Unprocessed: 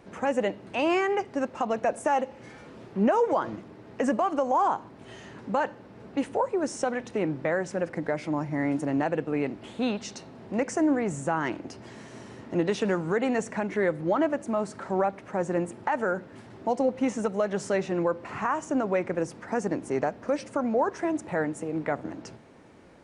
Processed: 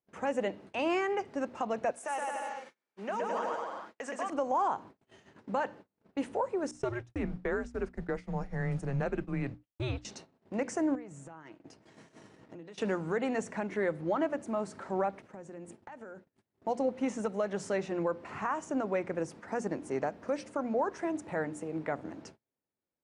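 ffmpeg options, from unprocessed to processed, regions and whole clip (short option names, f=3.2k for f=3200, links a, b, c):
-filter_complex "[0:a]asettb=1/sr,asplit=3[a][b][c];[a]atrim=end=1.914[d];[b]atrim=start=1.91:end=4.3,asetpts=PTS-STARTPTS,afade=t=in:d=0.004:c=qsin,afade=t=out:st=2.386:d=0.004:c=qsin,highpass=f=1.3k:p=1,aecho=1:1:120|216|292.8|354.2|403.4|442.7:0.794|0.631|0.501|0.398|0.316|0.251,atrim=end_sample=105399[e];[c]atrim=start=4.296[f];[d][e]acrossfade=d=0.004:c1=hsin:c2=qsin[g];[g][f]acrossfade=d=0.004:c1=qsin:c2=hsin,asettb=1/sr,asplit=3[h][i][j];[h]atrim=end=6.714[k];[i]atrim=start=6.71:end=10.05,asetpts=PTS-STARTPTS,afade=t=in:d=0.004:c=qsin,afade=t=out:st=3.336:d=0.004:c=qsin,agate=range=-33dB:threshold=-31dB:ratio=3:release=100:detection=peak,afreqshift=-130[l];[j]atrim=start=10.046[m];[k][l]acrossfade=d=0.004:c1=hsin:c2=qsin[n];[n][m]acrossfade=d=0.004:c1=qsin:c2=hsin,asettb=1/sr,asplit=3[o][p][q];[o]atrim=end=10.954[r];[p]atrim=start=10.95:end=12.78,asetpts=PTS-STARTPTS,afade=t=in:d=0.004:c=qsin,afade=t=out:st=1.826:d=0.004:c=qsin,highpass=42,aecho=1:1:6.4:0.32,atrim=end_sample=80703,acompressor=threshold=-38dB:ratio=12:attack=3.2:release=140:knee=1:detection=peak[s];[q]atrim=start=12.776[t];[r][s]acrossfade=d=0.004:c1=hsin:c2=qsin[u];[u][t]acrossfade=d=0.004:c1=qsin:c2=hsin,asettb=1/sr,asplit=3[v][w][x];[v]atrim=end=15.224[y];[w]atrim=start=15.22:end=16.61,asetpts=PTS-STARTPTS,afade=t=in:d=0.004:c=qsin,afade=t=out:st=1.386:d=0.004:c=qsin,acompressor=threshold=-36dB:ratio=5:attack=3.2:release=140:knee=1:detection=peak,adynamicequalizer=threshold=0.00224:dfrequency=1100:dqfactor=0.76:tfrequency=1100:tqfactor=0.76:attack=5:release=100:ratio=0.375:range=2.5:mode=cutabove:tftype=bell[z];[x]atrim=start=16.606[aa];[y][z]acrossfade=d=0.004:c1=hsin:c2=qsin[ab];[ab][aa]acrossfade=d=0.004:c1=qsin:c2=hsin,bandreject=f=60:t=h:w=6,bandreject=f=120:t=h:w=6,bandreject=f=180:t=h:w=6,bandreject=f=240:t=h:w=6,bandreject=f=300:t=h:w=6,agate=range=-35dB:threshold=-43dB:ratio=16:detection=peak,volume=-5.5dB"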